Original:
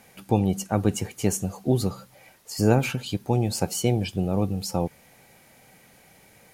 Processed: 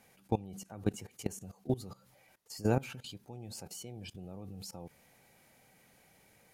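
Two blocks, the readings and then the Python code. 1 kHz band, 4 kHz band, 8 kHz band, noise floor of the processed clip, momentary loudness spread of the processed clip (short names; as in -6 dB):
-13.0 dB, -13.5 dB, -15.0 dB, -66 dBFS, 15 LU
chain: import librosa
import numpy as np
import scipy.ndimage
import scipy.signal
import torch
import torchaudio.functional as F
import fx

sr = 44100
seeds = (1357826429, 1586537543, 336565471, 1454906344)

y = fx.level_steps(x, sr, step_db=19)
y = y * 10.0 ** (-7.5 / 20.0)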